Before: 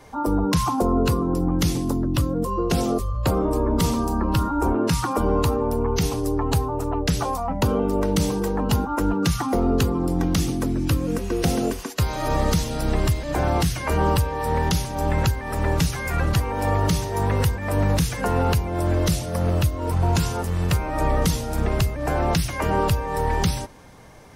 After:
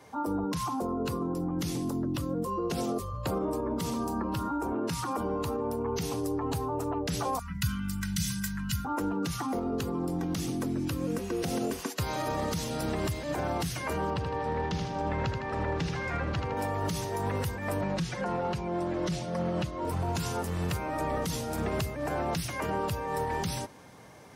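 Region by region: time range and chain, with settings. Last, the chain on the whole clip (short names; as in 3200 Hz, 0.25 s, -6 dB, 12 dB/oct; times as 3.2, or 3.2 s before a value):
7.39–8.85 elliptic band-stop 200–1500 Hz, stop band 60 dB + tone controls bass 0 dB, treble +3 dB + comb 2 ms
14.1–16.57 air absorption 150 m + feedback echo 79 ms, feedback 44%, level -9 dB
17.81–19.85 air absorption 80 m + comb 5.5 ms, depth 69% + Doppler distortion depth 0.12 ms
whole clip: HPF 110 Hz 12 dB/oct; limiter -17.5 dBFS; vocal rider; gain -5 dB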